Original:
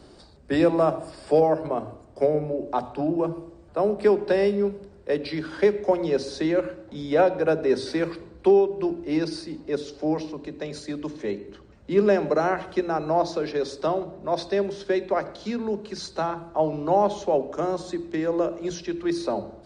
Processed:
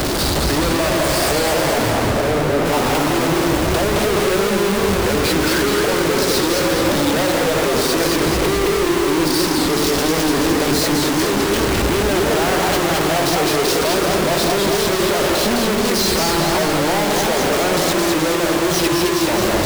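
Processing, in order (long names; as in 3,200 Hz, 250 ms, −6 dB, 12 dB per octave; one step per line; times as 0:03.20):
sign of each sample alone
0:01.90–0:02.66: high-shelf EQ 3,800 Hz −11 dB
noise that follows the level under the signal 23 dB
feedback echo with a swinging delay time 212 ms, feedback 62%, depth 192 cents, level −3 dB
level +5.5 dB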